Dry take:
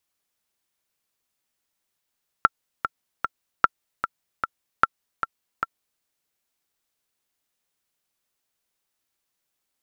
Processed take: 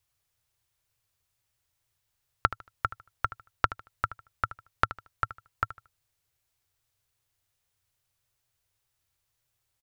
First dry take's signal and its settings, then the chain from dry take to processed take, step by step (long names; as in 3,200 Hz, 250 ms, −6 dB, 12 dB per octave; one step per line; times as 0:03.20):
click track 151 BPM, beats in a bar 3, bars 3, 1,350 Hz, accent 9 dB −1.5 dBFS
low shelf with overshoot 150 Hz +11 dB, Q 3
downward compressor 5 to 1, threshold −20 dBFS
repeating echo 76 ms, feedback 28%, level −15 dB